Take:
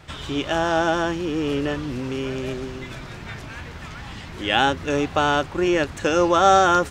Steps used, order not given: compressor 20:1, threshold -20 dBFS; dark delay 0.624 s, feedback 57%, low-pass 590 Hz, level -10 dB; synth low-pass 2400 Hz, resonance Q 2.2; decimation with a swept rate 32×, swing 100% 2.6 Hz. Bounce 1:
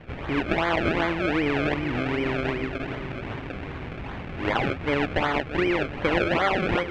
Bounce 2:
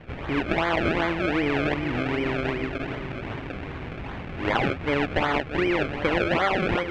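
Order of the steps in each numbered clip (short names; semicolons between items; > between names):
compressor > dark delay > decimation with a swept rate > synth low-pass; dark delay > decimation with a swept rate > compressor > synth low-pass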